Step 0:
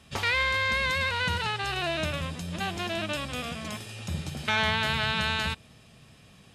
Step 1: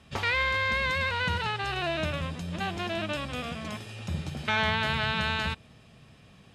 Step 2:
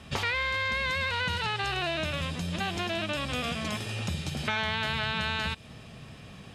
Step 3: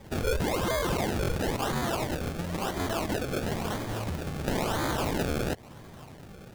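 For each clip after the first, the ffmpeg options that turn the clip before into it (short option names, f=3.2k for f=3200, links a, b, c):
-af "aemphasis=mode=reproduction:type=cd"
-filter_complex "[0:a]acrossover=split=2400[a][b];[a]acompressor=threshold=-38dB:ratio=6[c];[b]alimiter=level_in=11dB:limit=-24dB:level=0:latency=1,volume=-11dB[d];[c][d]amix=inputs=2:normalize=0,volume=8dB"
-filter_complex "[0:a]acrossover=split=260|6300[a][b][c];[b]aexciter=amount=1.6:drive=8.9:freq=2.2k[d];[a][d][c]amix=inputs=3:normalize=0,acrusher=samples=31:mix=1:aa=0.000001:lfo=1:lforange=31:lforate=0.98,volume=-2dB"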